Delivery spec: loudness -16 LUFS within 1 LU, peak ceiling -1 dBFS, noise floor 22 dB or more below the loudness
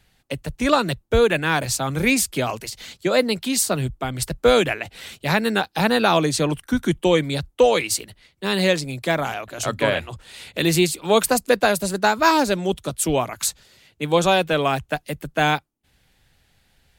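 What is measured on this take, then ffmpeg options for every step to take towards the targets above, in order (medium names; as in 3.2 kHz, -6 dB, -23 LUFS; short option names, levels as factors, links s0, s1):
loudness -21.0 LUFS; peak level -4.0 dBFS; loudness target -16.0 LUFS
-> -af "volume=1.78,alimiter=limit=0.891:level=0:latency=1"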